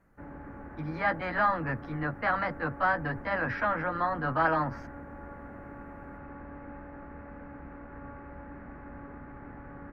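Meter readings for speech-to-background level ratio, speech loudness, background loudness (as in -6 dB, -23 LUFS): 15.5 dB, -30.0 LUFS, -45.5 LUFS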